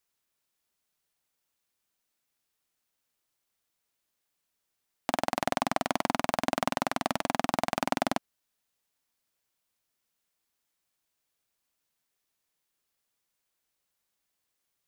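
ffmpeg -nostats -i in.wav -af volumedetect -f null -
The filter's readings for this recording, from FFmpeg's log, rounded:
mean_volume: -37.3 dB
max_volume: -7.6 dB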